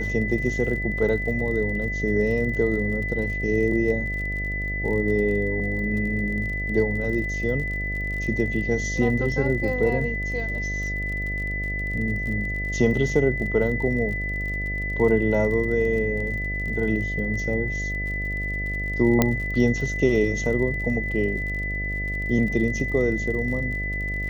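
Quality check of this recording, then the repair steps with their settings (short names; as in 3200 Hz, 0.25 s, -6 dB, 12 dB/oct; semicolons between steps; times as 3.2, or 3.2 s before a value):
buzz 50 Hz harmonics 14 -30 dBFS
crackle 43/s -33 dBFS
tone 2000 Hz -28 dBFS
19.22 pop -4 dBFS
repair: de-click; de-hum 50 Hz, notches 14; notch 2000 Hz, Q 30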